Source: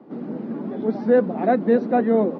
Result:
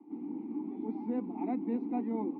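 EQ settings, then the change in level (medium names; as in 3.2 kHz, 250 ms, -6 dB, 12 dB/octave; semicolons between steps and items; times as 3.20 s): vowel filter u; -1.0 dB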